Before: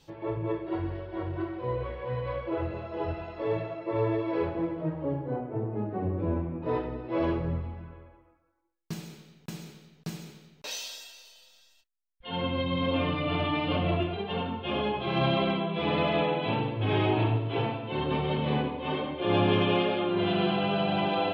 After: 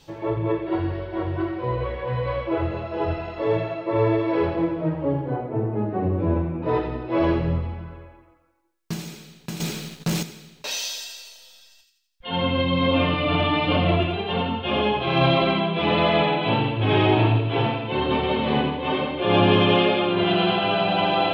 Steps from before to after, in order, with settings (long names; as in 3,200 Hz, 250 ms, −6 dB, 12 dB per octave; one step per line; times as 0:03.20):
mains-hum notches 50/100/150/200/250/300/350/400/450/500 Hz
delay with a high-pass on its return 85 ms, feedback 49%, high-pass 2,200 Hz, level −5 dB
0:09.60–0:10.23: leveller curve on the samples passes 3
level +7.5 dB